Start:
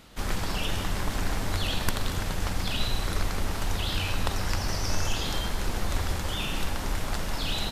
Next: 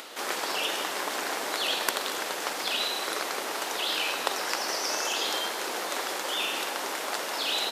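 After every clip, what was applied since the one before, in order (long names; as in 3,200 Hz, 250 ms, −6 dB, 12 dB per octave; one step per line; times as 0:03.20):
high-pass filter 360 Hz 24 dB per octave
upward compression, threshold −40 dBFS
level +4 dB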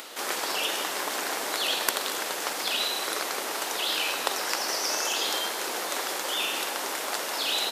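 high-shelf EQ 6,400 Hz +5.5 dB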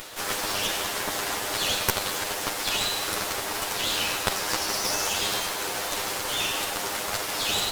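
lower of the sound and its delayed copy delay 9.9 ms
level +3 dB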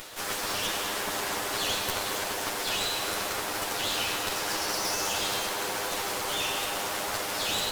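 soft clipping −17.5 dBFS, distortion −16 dB
tape delay 231 ms, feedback 87%, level −4 dB, low-pass 2,100 Hz
level −2.5 dB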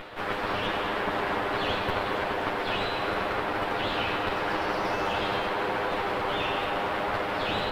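high-frequency loss of the air 480 metres
level +7 dB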